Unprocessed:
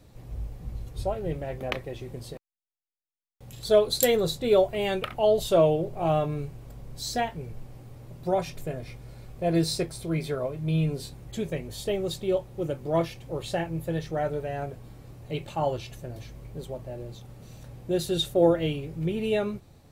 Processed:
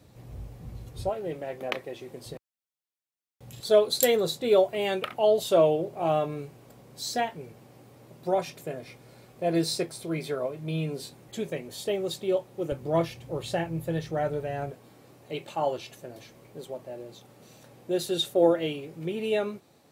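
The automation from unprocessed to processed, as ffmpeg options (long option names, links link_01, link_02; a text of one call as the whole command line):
ffmpeg -i in.wav -af "asetnsamples=nb_out_samples=441:pad=0,asendcmd='1.09 highpass f 250;2.26 highpass f 80;3.6 highpass f 210;12.72 highpass f 82;14.71 highpass f 250',highpass=79" out.wav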